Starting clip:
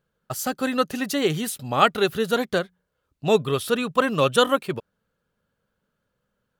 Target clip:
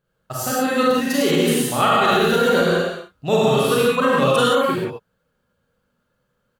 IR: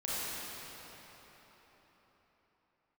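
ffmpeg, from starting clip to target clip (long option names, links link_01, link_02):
-filter_complex "[0:a]asplit=3[link_01][link_02][link_03];[link_01]afade=type=out:start_time=1.3:duration=0.02[link_04];[link_02]aecho=1:1:100|175|231.2|273.4|305.1:0.631|0.398|0.251|0.158|0.1,afade=type=in:start_time=1.3:duration=0.02,afade=type=out:start_time=3.76:duration=0.02[link_05];[link_03]afade=type=in:start_time=3.76:duration=0.02[link_06];[link_04][link_05][link_06]amix=inputs=3:normalize=0[link_07];[1:a]atrim=start_sample=2205,afade=type=out:start_time=0.24:duration=0.01,atrim=end_sample=11025[link_08];[link_07][link_08]afir=irnorm=-1:irlink=0,alimiter=level_in=9dB:limit=-1dB:release=50:level=0:latency=1,volume=-6.5dB"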